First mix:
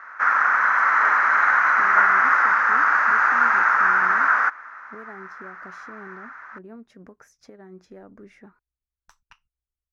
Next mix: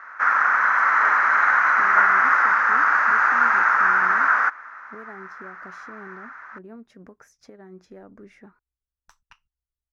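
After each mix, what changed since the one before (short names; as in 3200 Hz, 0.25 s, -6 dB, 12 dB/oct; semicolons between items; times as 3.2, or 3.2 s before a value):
none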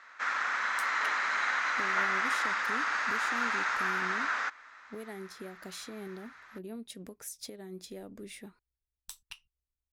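background -8.0 dB; master: remove EQ curve 490 Hz 0 dB, 1100 Hz +6 dB, 1500 Hz +7 dB, 3700 Hz -18 dB, 6000 Hz -9 dB, 8600 Hz -26 dB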